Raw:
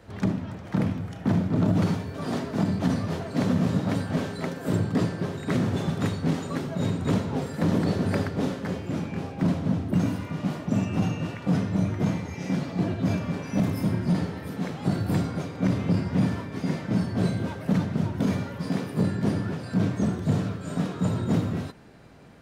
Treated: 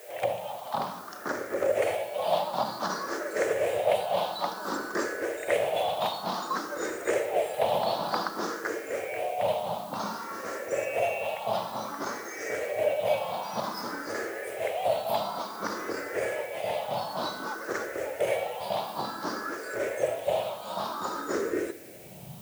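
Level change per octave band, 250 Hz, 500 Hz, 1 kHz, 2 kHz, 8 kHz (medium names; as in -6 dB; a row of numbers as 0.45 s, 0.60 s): -15.5 dB, +5.0 dB, +7.0 dB, +4.0 dB, +3.5 dB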